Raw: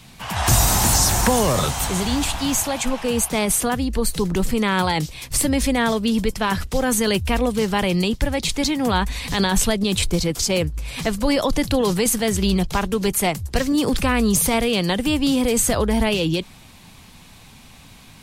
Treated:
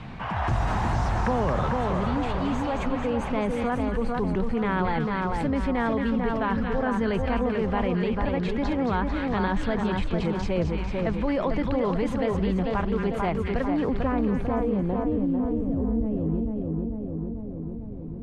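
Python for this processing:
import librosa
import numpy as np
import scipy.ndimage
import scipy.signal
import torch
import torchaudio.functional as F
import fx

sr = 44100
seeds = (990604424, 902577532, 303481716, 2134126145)

y = fx.filter_sweep_lowpass(x, sr, from_hz=1600.0, to_hz=280.0, start_s=13.63, end_s=15.53, q=0.84)
y = fx.echo_split(y, sr, split_hz=1400.0, low_ms=446, high_ms=223, feedback_pct=52, wet_db=-4.5)
y = fx.env_flatten(y, sr, amount_pct=50)
y = y * 10.0 ** (-8.5 / 20.0)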